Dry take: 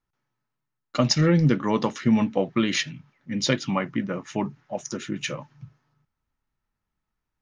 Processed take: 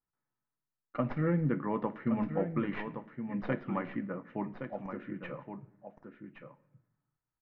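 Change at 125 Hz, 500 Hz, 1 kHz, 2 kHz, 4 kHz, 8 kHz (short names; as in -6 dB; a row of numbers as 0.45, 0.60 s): -10.5 dB, -8.5 dB, -8.0 dB, -11.5 dB, under -25 dB, under -40 dB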